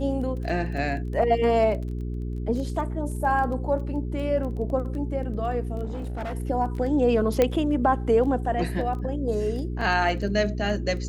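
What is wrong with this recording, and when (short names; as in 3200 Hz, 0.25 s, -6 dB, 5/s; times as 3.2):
crackle 11/s -33 dBFS
hum 60 Hz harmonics 7 -30 dBFS
5.84–6.35 clipped -28 dBFS
7.42 pop -8 dBFS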